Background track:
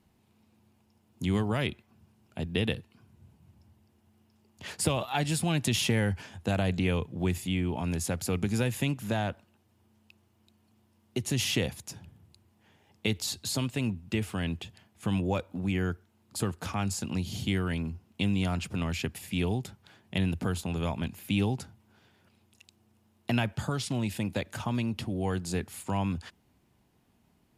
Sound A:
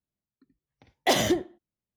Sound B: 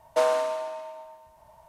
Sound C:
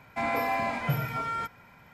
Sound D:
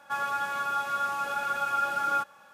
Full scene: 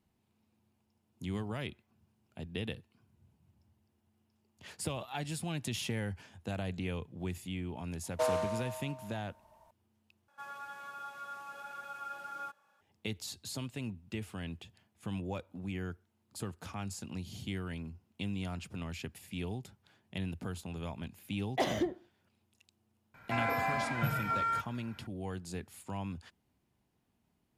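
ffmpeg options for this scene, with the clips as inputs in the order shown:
ffmpeg -i bed.wav -i cue0.wav -i cue1.wav -i cue2.wav -i cue3.wav -filter_complex "[0:a]volume=-9.5dB[link_01];[1:a]highshelf=frequency=3400:gain=-12[link_02];[3:a]equalizer=frequency=1500:width=3.9:gain=9[link_03];[link_01]asplit=2[link_04][link_05];[link_04]atrim=end=10.284[link_06];[4:a]atrim=end=2.53,asetpts=PTS-STARTPTS,volume=-15.5dB[link_07];[link_05]atrim=start=12.806[link_08];[2:a]atrim=end=1.68,asetpts=PTS-STARTPTS,volume=-8.5dB,afade=type=in:duration=0.004:curve=hsin,afade=type=out:start_time=1.676:duration=0.004:curve=hsin,adelay=8030[link_09];[link_02]atrim=end=1.96,asetpts=PTS-STARTPTS,volume=-7.5dB,afade=type=in:duration=0.004:curve=hsin,afade=type=out:start_time=1.956:duration=0.004:curve=hsin,adelay=20510[link_10];[link_03]atrim=end=1.93,asetpts=PTS-STARTPTS,volume=-5.5dB,afade=type=in:duration=0.004:curve=hsin,afade=type=out:start_time=1.926:duration=0.004:curve=hsin,adelay=23140[link_11];[link_06][link_07]acrossfade=duration=0.004:curve1=hsin:curve2=hsin[link_12];[link_12][link_08]acrossfade=duration=0.004:curve1=hsin:curve2=hsin[link_13];[link_13][link_09][link_10][link_11]amix=inputs=4:normalize=0" out.wav

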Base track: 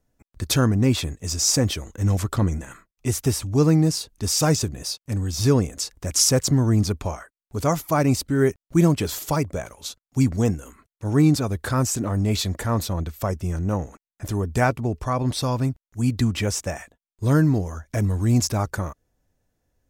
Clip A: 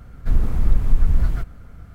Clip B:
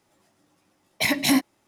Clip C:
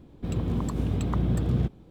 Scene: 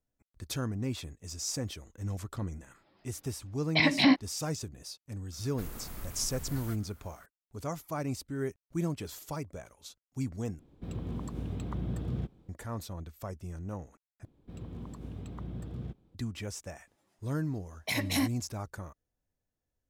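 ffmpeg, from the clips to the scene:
ffmpeg -i bed.wav -i cue0.wav -i cue1.wav -i cue2.wav -filter_complex "[2:a]asplit=2[link_01][link_02];[3:a]asplit=2[link_03][link_04];[0:a]volume=-15dB[link_05];[link_01]aresample=11025,aresample=44100[link_06];[1:a]aemphasis=mode=production:type=riaa[link_07];[link_05]asplit=3[link_08][link_09][link_10];[link_08]atrim=end=10.594[link_11];[link_03]atrim=end=1.9,asetpts=PTS-STARTPTS,volume=-9.5dB[link_12];[link_09]atrim=start=12.486:end=14.254[link_13];[link_04]atrim=end=1.9,asetpts=PTS-STARTPTS,volume=-15dB[link_14];[link_10]atrim=start=16.146[link_15];[link_06]atrim=end=1.67,asetpts=PTS-STARTPTS,volume=-2dB,afade=type=in:duration=0.004:curve=hsin,afade=type=out:start_time=1.666:duration=0.004:curve=hsin,adelay=2750[link_16];[link_07]atrim=end=1.94,asetpts=PTS-STARTPTS,volume=-10dB,afade=type=in:duration=0.004:curve=hsin,afade=type=out:start_time=1.936:duration=0.004:curve=hsin,adelay=5320[link_17];[link_02]atrim=end=1.67,asetpts=PTS-STARTPTS,volume=-9.5dB,afade=type=in:duration=0.004:curve=hsin,afade=type=out:start_time=1.666:duration=0.004:curve=hsin,adelay=16870[link_18];[link_11][link_12]acrossfade=duration=0.004:curve1=hsin:curve2=hsin[link_19];[link_19][link_13]acrossfade=duration=0.004:curve1=hsin:curve2=hsin[link_20];[link_20][link_14]acrossfade=duration=0.004:curve1=hsin:curve2=hsin[link_21];[link_21][link_15]acrossfade=duration=0.004:curve1=hsin:curve2=hsin[link_22];[link_22][link_16][link_17][link_18]amix=inputs=4:normalize=0" out.wav

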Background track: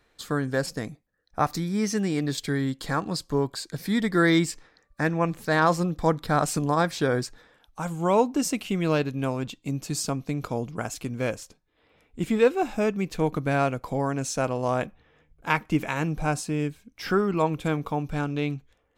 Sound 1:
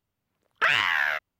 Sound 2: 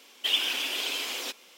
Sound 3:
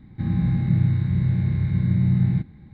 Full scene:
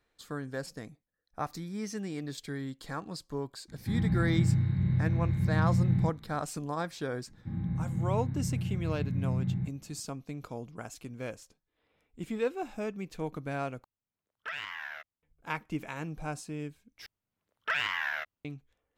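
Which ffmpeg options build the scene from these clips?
ffmpeg -i bed.wav -i cue0.wav -i cue1.wav -i cue2.wav -filter_complex "[3:a]asplit=2[link_01][link_02];[1:a]asplit=2[link_03][link_04];[0:a]volume=-11dB[link_05];[link_02]lowpass=frequency=1800:poles=1[link_06];[link_05]asplit=3[link_07][link_08][link_09];[link_07]atrim=end=13.844[link_10];[link_03]atrim=end=1.39,asetpts=PTS-STARTPTS,volume=-16.5dB[link_11];[link_08]atrim=start=15.226:end=17.064[link_12];[link_04]atrim=end=1.39,asetpts=PTS-STARTPTS,volume=-8.5dB[link_13];[link_09]atrim=start=18.446[link_14];[link_01]atrim=end=2.73,asetpts=PTS-STARTPTS,volume=-6.5dB,afade=type=in:duration=0.004:curve=hsin,afade=type=out:start_time=2.726:duration=0.004:curve=hsin,adelay=3680[link_15];[link_06]atrim=end=2.73,asetpts=PTS-STARTPTS,volume=-11.5dB,afade=type=in:duration=0.004:curve=hsin,afade=type=out:start_time=2.726:duration=0.004:curve=hsin,adelay=7270[link_16];[link_10][link_11]acrossfade=duration=0.004:curve1=hsin:curve2=hsin[link_17];[link_17][link_12]acrossfade=duration=0.004:curve1=hsin:curve2=hsin[link_18];[link_18][link_13]acrossfade=duration=0.004:curve1=hsin:curve2=hsin[link_19];[link_19][link_14]acrossfade=duration=0.004:curve1=hsin:curve2=hsin[link_20];[link_20][link_15][link_16]amix=inputs=3:normalize=0" out.wav

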